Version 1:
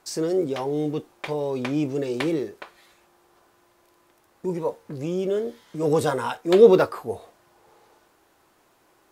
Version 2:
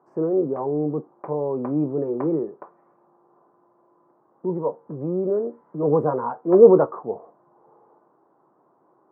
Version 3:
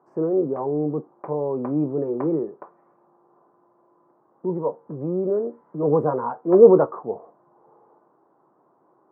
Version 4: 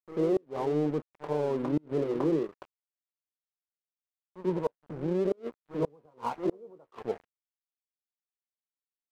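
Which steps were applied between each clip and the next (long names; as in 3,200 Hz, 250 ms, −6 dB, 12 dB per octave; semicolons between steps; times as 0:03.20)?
elliptic band-pass filter 140–1,100 Hz, stop band 50 dB; level +2 dB
no processing that can be heard
echo ahead of the sound 92 ms −13 dB; dead-zone distortion −39 dBFS; gate with flip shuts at −14 dBFS, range −35 dB; level −3 dB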